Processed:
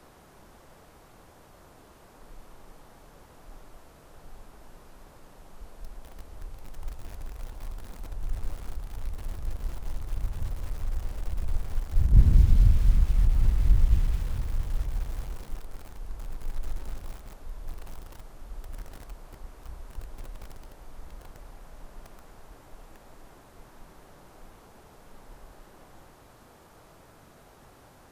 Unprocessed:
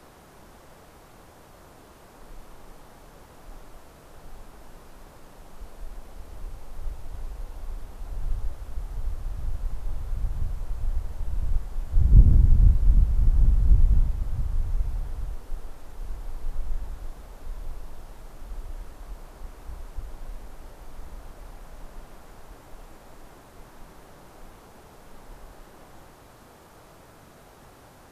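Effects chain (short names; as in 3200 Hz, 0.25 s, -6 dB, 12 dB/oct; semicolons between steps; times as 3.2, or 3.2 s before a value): 7.47–8.09 zero-crossing step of -50 dBFS; lo-fi delay 0.216 s, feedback 35%, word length 6-bit, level -6 dB; gain -3.5 dB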